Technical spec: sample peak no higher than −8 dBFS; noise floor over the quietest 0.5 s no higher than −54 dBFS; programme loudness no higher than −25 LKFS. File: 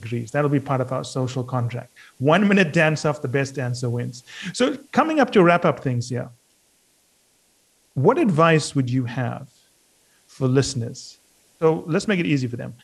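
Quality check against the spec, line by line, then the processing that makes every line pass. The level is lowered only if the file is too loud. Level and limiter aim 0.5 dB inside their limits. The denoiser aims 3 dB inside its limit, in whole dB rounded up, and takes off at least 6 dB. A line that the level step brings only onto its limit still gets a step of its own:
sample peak −3.5 dBFS: out of spec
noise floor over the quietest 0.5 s −62 dBFS: in spec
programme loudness −21.0 LKFS: out of spec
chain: level −4.5 dB
brickwall limiter −8.5 dBFS

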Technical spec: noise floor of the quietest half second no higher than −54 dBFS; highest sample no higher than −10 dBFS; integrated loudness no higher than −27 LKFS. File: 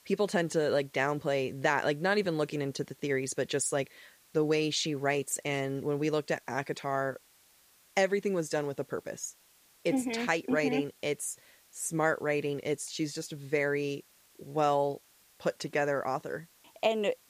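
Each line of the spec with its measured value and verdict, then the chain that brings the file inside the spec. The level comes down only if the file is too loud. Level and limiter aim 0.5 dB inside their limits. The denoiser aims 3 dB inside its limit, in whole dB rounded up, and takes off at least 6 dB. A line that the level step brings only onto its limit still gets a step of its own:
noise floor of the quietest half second −63 dBFS: in spec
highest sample −13.5 dBFS: in spec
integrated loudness −31.5 LKFS: in spec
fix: no processing needed

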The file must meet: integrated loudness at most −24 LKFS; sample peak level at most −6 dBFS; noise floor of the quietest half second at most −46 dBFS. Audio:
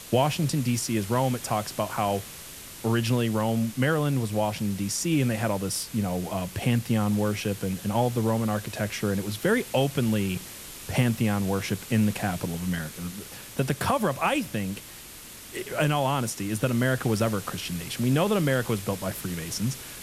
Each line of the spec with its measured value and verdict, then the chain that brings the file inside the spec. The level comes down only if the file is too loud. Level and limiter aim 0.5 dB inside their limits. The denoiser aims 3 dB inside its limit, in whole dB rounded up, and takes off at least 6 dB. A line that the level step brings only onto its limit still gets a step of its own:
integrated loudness −27.0 LKFS: in spec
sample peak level −10.5 dBFS: in spec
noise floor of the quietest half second −44 dBFS: out of spec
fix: broadband denoise 6 dB, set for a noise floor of −44 dBFS

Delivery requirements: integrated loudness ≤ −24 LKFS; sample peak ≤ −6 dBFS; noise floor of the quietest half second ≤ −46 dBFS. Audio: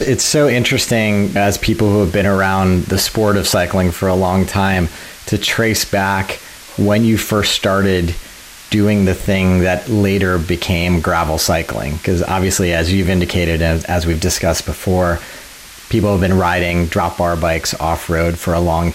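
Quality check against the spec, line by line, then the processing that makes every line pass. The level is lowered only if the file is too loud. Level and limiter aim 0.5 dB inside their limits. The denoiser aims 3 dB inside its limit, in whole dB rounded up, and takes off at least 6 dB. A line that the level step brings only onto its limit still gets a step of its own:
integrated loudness −15.0 LKFS: out of spec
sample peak −4.5 dBFS: out of spec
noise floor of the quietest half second −36 dBFS: out of spec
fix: broadband denoise 6 dB, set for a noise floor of −36 dBFS
level −9.5 dB

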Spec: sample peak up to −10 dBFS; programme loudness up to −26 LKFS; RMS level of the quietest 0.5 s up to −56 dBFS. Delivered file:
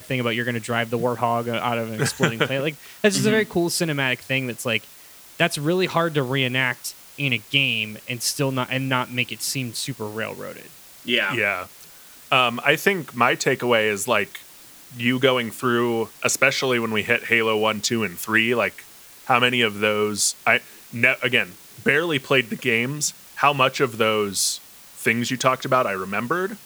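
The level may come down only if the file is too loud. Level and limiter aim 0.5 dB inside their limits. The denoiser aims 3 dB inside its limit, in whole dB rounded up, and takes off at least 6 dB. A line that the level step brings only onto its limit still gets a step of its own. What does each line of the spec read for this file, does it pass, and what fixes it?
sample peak −1.5 dBFS: out of spec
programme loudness −21.5 LKFS: out of spec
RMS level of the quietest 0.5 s −46 dBFS: out of spec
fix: broadband denoise 8 dB, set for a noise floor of −46 dBFS
level −5 dB
brickwall limiter −10.5 dBFS

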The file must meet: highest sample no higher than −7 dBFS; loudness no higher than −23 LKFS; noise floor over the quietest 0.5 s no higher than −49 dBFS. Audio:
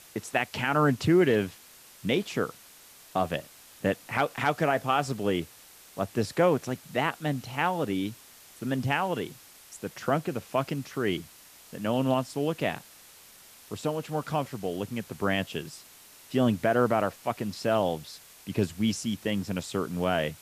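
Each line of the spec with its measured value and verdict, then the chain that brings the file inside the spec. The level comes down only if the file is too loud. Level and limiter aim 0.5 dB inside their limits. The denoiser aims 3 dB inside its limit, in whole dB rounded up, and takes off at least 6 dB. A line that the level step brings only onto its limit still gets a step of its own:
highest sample −11.0 dBFS: in spec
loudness −29.0 LKFS: in spec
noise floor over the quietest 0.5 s −53 dBFS: in spec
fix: no processing needed

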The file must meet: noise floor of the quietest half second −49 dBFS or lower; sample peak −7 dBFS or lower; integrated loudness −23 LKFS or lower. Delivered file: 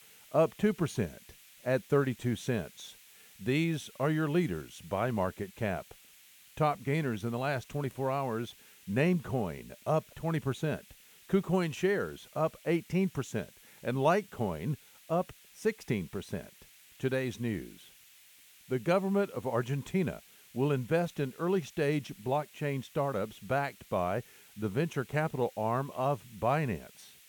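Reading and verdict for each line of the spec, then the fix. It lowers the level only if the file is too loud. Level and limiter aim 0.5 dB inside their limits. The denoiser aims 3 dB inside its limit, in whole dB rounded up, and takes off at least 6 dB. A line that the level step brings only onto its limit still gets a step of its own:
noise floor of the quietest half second −58 dBFS: in spec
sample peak −14.5 dBFS: in spec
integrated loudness −33.0 LKFS: in spec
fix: no processing needed

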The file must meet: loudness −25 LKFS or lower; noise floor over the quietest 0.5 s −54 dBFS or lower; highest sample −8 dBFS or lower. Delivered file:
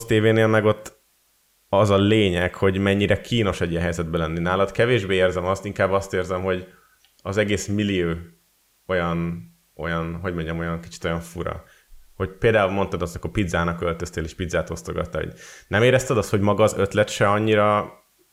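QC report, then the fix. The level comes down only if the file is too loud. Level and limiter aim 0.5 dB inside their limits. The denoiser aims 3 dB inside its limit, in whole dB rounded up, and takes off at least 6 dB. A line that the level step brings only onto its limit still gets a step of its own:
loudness −22.0 LKFS: out of spec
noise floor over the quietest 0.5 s −63 dBFS: in spec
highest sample −6.5 dBFS: out of spec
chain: level −3.5 dB

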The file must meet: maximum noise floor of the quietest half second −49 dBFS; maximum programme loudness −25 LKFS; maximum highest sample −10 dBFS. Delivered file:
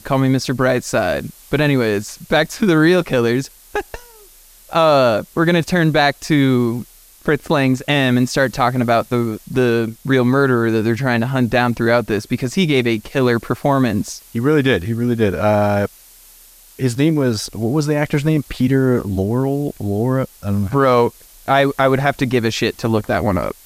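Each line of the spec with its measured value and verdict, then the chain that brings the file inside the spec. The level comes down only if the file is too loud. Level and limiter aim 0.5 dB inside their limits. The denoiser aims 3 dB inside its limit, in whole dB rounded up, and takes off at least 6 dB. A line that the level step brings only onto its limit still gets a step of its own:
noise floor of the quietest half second −45 dBFS: out of spec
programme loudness −17.0 LKFS: out of spec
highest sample −3.5 dBFS: out of spec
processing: level −8.5 dB

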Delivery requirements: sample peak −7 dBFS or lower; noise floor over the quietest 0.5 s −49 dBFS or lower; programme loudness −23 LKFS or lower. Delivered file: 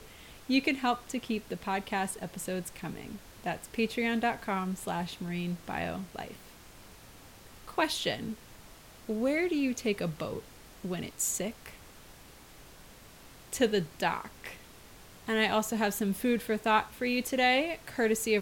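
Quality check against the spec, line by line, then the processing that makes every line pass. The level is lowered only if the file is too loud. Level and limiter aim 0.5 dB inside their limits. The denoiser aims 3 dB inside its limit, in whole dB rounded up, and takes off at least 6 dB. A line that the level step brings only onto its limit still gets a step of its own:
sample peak −11.5 dBFS: in spec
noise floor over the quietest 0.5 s −53 dBFS: in spec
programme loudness −31.5 LKFS: in spec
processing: no processing needed

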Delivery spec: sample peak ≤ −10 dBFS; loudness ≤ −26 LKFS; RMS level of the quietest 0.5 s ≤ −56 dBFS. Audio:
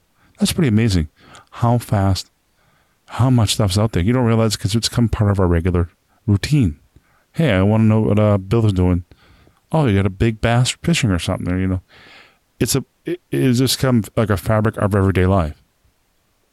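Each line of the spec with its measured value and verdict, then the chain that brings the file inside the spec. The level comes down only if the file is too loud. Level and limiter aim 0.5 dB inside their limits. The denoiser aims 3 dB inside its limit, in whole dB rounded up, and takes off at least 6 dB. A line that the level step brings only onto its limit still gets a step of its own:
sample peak −6.0 dBFS: out of spec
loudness −17.5 LKFS: out of spec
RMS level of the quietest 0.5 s −62 dBFS: in spec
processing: level −9 dB

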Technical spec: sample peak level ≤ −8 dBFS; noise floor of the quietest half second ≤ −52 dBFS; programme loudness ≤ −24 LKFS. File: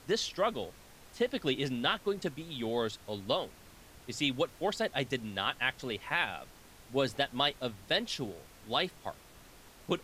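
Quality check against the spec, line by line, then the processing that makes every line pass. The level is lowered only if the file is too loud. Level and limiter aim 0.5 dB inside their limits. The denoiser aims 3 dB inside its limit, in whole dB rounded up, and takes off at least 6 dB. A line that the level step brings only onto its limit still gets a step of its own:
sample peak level −15.0 dBFS: in spec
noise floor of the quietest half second −55 dBFS: in spec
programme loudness −33.5 LKFS: in spec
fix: no processing needed

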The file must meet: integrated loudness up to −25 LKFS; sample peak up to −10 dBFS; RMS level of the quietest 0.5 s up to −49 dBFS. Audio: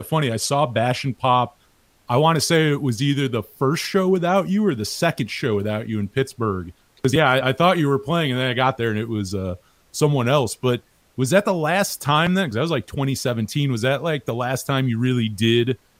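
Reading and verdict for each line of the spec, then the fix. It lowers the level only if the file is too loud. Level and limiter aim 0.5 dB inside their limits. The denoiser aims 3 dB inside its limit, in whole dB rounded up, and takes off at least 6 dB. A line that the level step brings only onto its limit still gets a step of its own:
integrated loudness −21.0 LKFS: out of spec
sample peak −4.0 dBFS: out of spec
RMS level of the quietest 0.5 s −59 dBFS: in spec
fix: level −4.5 dB
brickwall limiter −10.5 dBFS

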